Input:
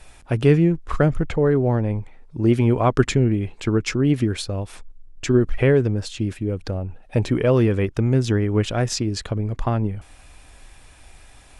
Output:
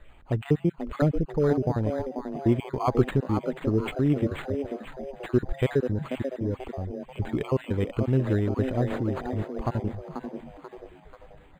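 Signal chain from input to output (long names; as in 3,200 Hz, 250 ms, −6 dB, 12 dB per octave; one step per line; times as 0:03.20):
time-frequency cells dropped at random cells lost 37%
echo with shifted repeats 487 ms, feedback 41%, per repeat +130 Hz, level −8 dB
linearly interpolated sample-rate reduction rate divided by 8×
level −4.5 dB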